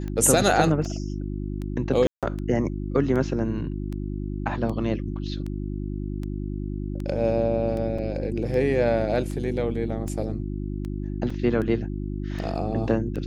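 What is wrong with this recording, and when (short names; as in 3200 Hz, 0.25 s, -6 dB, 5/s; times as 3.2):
hum 50 Hz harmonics 7 -30 dBFS
tick 78 rpm -22 dBFS
2.07–2.23 gap 0.157 s
7.98 gap 4.8 ms
11.3 gap 3.9 ms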